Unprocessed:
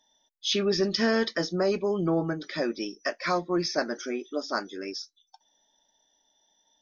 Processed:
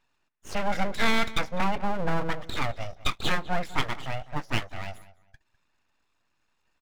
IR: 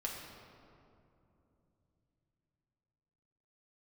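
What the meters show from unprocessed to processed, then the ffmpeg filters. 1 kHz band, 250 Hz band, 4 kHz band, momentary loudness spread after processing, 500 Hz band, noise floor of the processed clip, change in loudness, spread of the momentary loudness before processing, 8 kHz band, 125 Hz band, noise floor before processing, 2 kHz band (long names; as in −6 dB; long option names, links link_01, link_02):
+4.0 dB, −5.0 dB, −2.0 dB, 10 LU, −7.0 dB, −73 dBFS, −1.5 dB, 9 LU, can't be measured, +2.5 dB, −73 dBFS, +3.0 dB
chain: -filter_complex "[0:a]highshelf=frequency=2800:width_type=q:width=3:gain=-13,aeval=exprs='abs(val(0))':channel_layout=same,asplit=2[link_01][link_02];[link_02]adelay=202,lowpass=frequency=3100:poles=1,volume=-17dB,asplit=2[link_03][link_04];[link_04]adelay=202,lowpass=frequency=3100:poles=1,volume=0.24[link_05];[link_01][link_03][link_05]amix=inputs=3:normalize=0,volume=1.5dB"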